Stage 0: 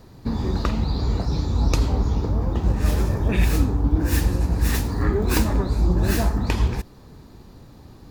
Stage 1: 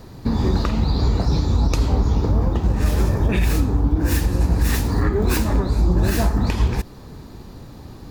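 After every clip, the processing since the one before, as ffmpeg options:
-af "alimiter=limit=-15.5dB:level=0:latency=1:release=257,volume=6.5dB"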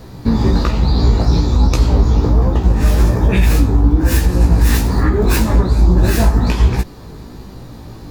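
-af "flanger=delay=15.5:depth=2.6:speed=1.2,volume=8dB"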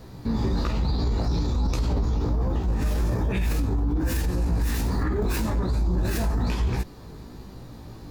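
-af "alimiter=limit=-9.5dB:level=0:latency=1:release=16,volume=-8dB"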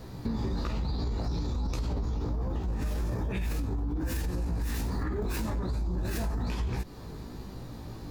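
-af "acompressor=threshold=-28dB:ratio=6"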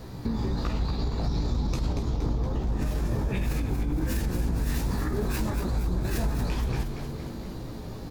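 -filter_complex "[0:a]asplit=9[a][b][c][d][e][f][g][h][i];[b]adelay=234,afreqshift=-97,volume=-7dB[j];[c]adelay=468,afreqshift=-194,volume=-11.3dB[k];[d]adelay=702,afreqshift=-291,volume=-15.6dB[l];[e]adelay=936,afreqshift=-388,volume=-19.9dB[m];[f]adelay=1170,afreqshift=-485,volume=-24.2dB[n];[g]adelay=1404,afreqshift=-582,volume=-28.5dB[o];[h]adelay=1638,afreqshift=-679,volume=-32.8dB[p];[i]adelay=1872,afreqshift=-776,volume=-37.1dB[q];[a][j][k][l][m][n][o][p][q]amix=inputs=9:normalize=0,volume=2.5dB"

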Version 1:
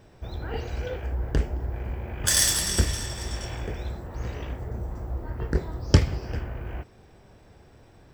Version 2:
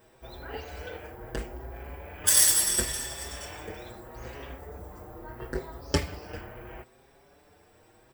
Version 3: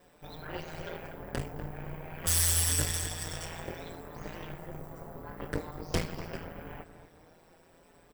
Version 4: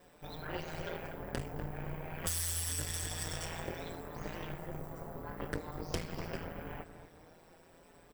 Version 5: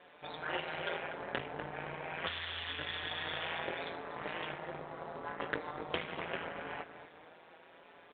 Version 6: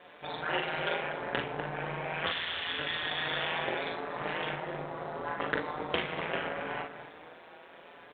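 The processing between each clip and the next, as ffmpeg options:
-filter_complex "[0:a]aexciter=amount=3.5:drive=3.6:freq=8.3k,bass=f=250:g=-11,treble=f=4k:g=-1,asplit=2[a][b];[b]adelay=5.9,afreqshift=0.75[c];[a][c]amix=inputs=2:normalize=1,volume=1dB"
-filter_complex "[0:a]aeval=exprs='(tanh(25.1*val(0)+0.75)-tanh(0.75))/25.1':c=same,asplit=2[a][b];[b]adelay=242,lowpass=f=2.1k:p=1,volume=-10dB,asplit=2[c][d];[d]adelay=242,lowpass=f=2.1k:p=1,volume=0.43,asplit=2[e][f];[f]adelay=242,lowpass=f=2.1k:p=1,volume=0.43,asplit=2[g][h];[h]adelay=242,lowpass=f=2.1k:p=1,volume=0.43,asplit=2[i][j];[j]adelay=242,lowpass=f=2.1k:p=1,volume=0.43[k];[a][c][e][g][i][k]amix=inputs=6:normalize=0,aeval=exprs='val(0)*sin(2*PI*84*n/s)':c=same,volume=6dB"
-af "acompressor=threshold=-32dB:ratio=6"
-af "highpass=f=910:p=1,aresample=8000,acrusher=bits=5:mode=log:mix=0:aa=0.000001,aresample=44100,volume=8dB"
-af "aecho=1:1:41|55:0.562|0.299,volume=4.5dB"

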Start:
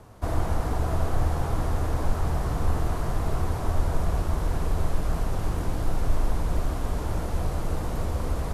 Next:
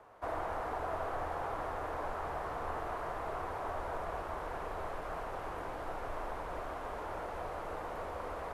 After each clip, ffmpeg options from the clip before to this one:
-filter_complex "[0:a]acrossover=split=430 2600:gain=0.0891 1 0.158[a][b][c];[a][b][c]amix=inputs=3:normalize=0,volume=-2dB"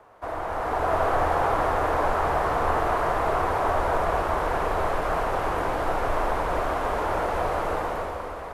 -af "dynaudnorm=f=130:g=11:m=10dB,volume=5dB"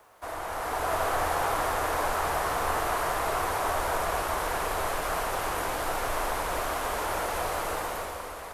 -af "crystalizer=i=6.5:c=0,volume=-7dB"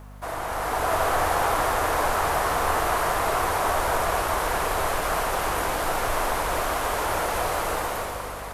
-af "aeval=exprs='val(0)+0.00501*(sin(2*PI*50*n/s)+sin(2*PI*2*50*n/s)/2+sin(2*PI*3*50*n/s)/3+sin(2*PI*4*50*n/s)/4+sin(2*PI*5*50*n/s)/5)':c=same,volume=4.5dB"

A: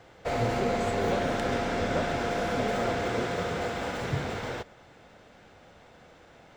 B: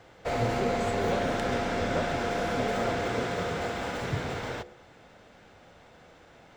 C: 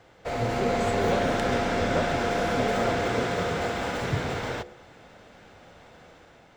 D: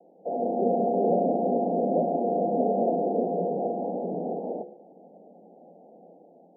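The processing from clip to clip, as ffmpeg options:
-af "bandreject=f=71.18:t=h:w=4,bandreject=f=142.36:t=h:w=4,bandreject=f=213.54:t=h:w=4,bandreject=f=284.72:t=h:w=4,bandreject=f=355.9:t=h:w=4,bandreject=f=427.08:t=h:w=4,bandreject=f=498.26:t=h:w=4,bandreject=f=569.44:t=h:w=4,bandreject=f=640.62:t=h:w=4,bandreject=f=711.8:t=h:w=4,bandreject=f=782.98:t=h:w=4"
-af "dynaudnorm=f=160:g=7:m=5dB,volume=-1.5dB"
-af "asuperpass=centerf=370:order=20:qfactor=0.59,volume=2dB"

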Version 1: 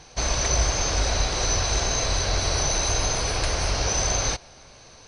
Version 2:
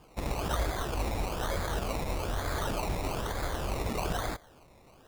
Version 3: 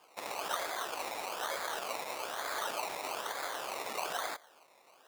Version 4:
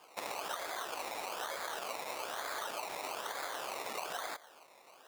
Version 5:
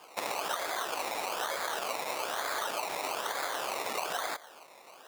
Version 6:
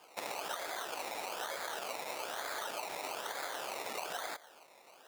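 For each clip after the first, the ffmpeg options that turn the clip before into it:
-af "acrusher=samples=22:mix=1:aa=0.000001:lfo=1:lforange=13.2:lforate=1.1,volume=-8.5dB"
-af "highpass=670"
-af "acompressor=threshold=-38dB:ratio=6,volume=3dB"
-af "highpass=68,volume=6dB"
-af "equalizer=f=1.1k:t=o:w=0.21:g=-5,volume=-5.5dB"

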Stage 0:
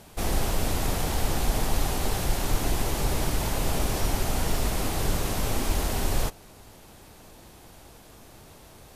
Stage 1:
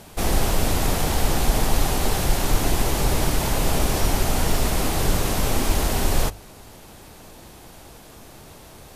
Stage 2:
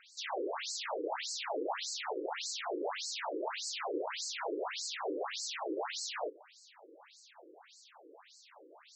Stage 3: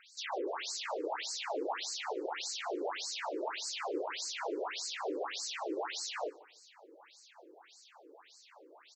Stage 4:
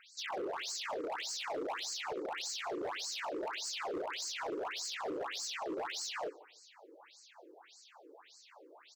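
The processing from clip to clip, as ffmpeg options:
-af "bandreject=f=50:t=h:w=6,bandreject=f=100:t=h:w=6,volume=5.5dB"
-af "afftfilt=real='re*between(b*sr/1024,370*pow(5900/370,0.5+0.5*sin(2*PI*1.7*pts/sr))/1.41,370*pow(5900/370,0.5+0.5*sin(2*PI*1.7*pts/sr))*1.41)':imag='im*between(b*sr/1024,370*pow(5900/370,0.5+0.5*sin(2*PI*1.7*pts/sr))/1.41,370*pow(5900/370,0.5+0.5*sin(2*PI*1.7*pts/sr))*1.41)':win_size=1024:overlap=0.75,volume=-4dB"
-af "aecho=1:1:148|296:0.075|0.0157"
-af "volume=34.5dB,asoftclip=hard,volume=-34.5dB"

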